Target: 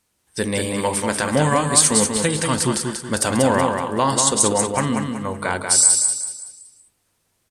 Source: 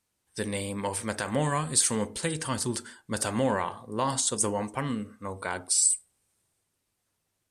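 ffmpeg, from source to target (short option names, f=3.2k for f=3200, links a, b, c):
-af "equalizer=f=110:t=o:w=0.23:g=-3.5,aecho=1:1:188|376|564|752|940:0.562|0.214|0.0812|0.0309|0.0117,volume=9dB"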